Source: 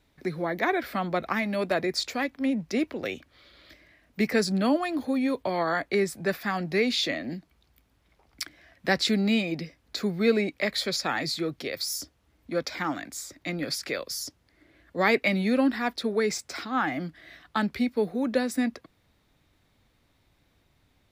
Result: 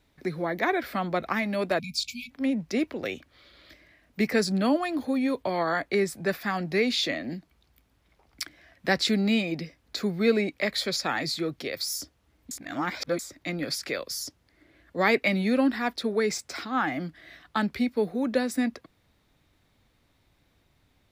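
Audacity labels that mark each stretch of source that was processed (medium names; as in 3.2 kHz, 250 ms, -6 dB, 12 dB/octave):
1.790000	2.310000	spectral selection erased 240–2200 Hz
12.510000	13.190000	reverse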